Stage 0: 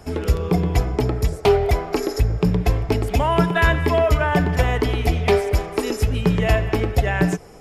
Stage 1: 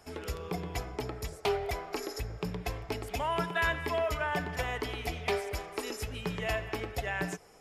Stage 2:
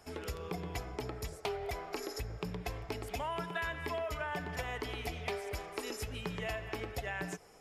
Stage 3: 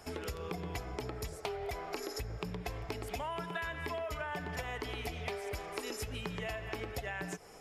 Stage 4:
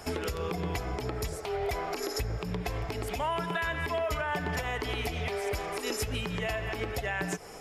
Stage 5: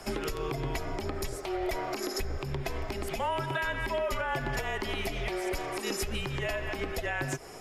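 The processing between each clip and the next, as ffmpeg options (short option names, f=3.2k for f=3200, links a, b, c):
-af "lowshelf=f=470:g=-11.5,volume=-8.5dB"
-af "acompressor=threshold=-33dB:ratio=4,volume=-1.5dB"
-af "acompressor=threshold=-44dB:ratio=2.5,volume=5.5dB"
-af "alimiter=level_in=5.5dB:limit=-24dB:level=0:latency=1:release=92,volume=-5.5dB,volume=8.5dB"
-af "afreqshift=-38"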